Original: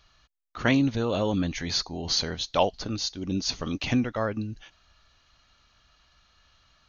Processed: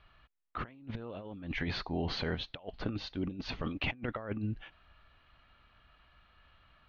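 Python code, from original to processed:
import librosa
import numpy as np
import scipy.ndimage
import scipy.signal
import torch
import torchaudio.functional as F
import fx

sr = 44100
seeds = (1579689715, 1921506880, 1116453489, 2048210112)

y = scipy.signal.sosfilt(scipy.signal.butter(4, 2900.0, 'lowpass', fs=sr, output='sos'), x)
y = fx.over_compress(y, sr, threshold_db=-32.0, ratio=-0.5)
y = y * librosa.db_to_amplitude(-4.5)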